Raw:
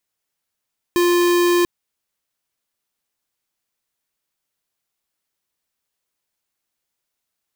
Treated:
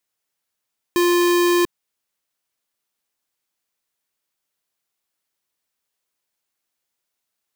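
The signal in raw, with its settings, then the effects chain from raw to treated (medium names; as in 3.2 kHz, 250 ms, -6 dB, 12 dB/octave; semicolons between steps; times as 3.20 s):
tone square 350 Hz -15.5 dBFS 0.69 s
bass shelf 150 Hz -6 dB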